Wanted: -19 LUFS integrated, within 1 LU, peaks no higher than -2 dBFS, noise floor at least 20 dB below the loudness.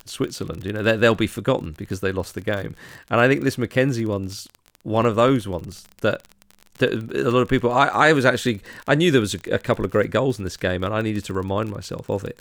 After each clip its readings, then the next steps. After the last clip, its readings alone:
tick rate 33 per s; loudness -21.5 LUFS; peak level -2.5 dBFS; loudness target -19.0 LUFS
-> de-click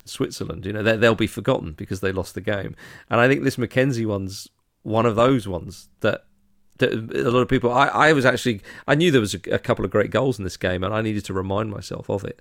tick rate 0.40 per s; loudness -21.5 LUFS; peak level -2.5 dBFS; loudness target -19.0 LUFS
-> trim +2.5 dB; peak limiter -2 dBFS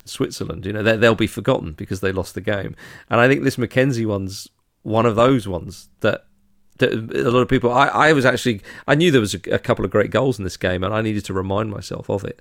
loudness -19.0 LUFS; peak level -2.0 dBFS; noise floor -57 dBFS

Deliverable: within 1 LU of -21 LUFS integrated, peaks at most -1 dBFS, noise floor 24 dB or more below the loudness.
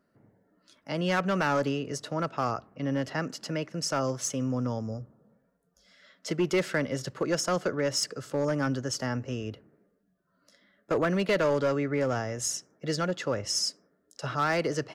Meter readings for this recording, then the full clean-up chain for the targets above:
clipped samples 1.1%; clipping level -20.0 dBFS; loudness -29.5 LUFS; peak level -20.0 dBFS; loudness target -21.0 LUFS
-> clip repair -20 dBFS; trim +8.5 dB

